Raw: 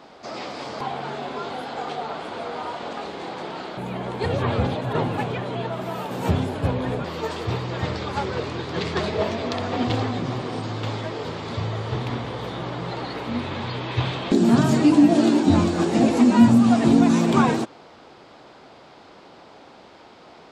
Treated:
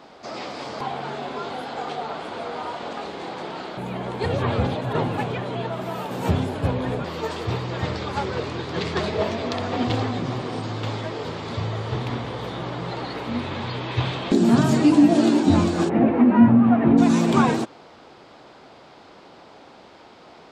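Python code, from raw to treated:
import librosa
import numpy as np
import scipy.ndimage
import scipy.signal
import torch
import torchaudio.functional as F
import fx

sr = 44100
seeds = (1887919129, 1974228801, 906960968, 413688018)

y = fx.lowpass(x, sr, hz=2200.0, slope=24, at=(15.88, 16.97), fade=0.02)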